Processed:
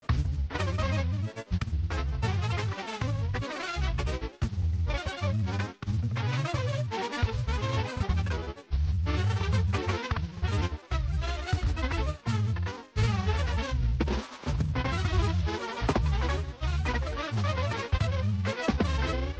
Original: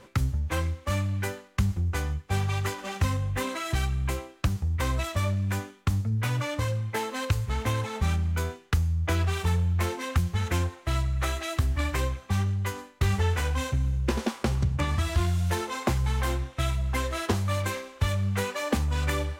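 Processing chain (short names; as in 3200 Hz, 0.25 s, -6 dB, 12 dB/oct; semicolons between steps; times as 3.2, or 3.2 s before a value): CVSD 32 kbps; grains, pitch spread up and down by 3 st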